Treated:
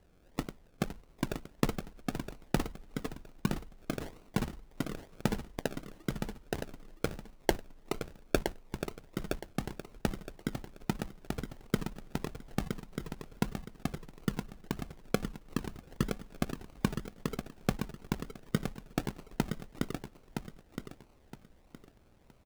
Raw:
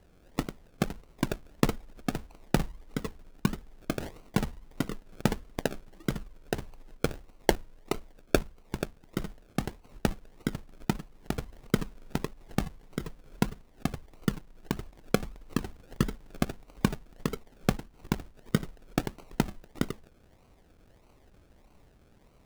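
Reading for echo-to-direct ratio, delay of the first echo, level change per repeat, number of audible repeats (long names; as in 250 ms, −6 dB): −6.5 dB, 967 ms, −11.5 dB, 3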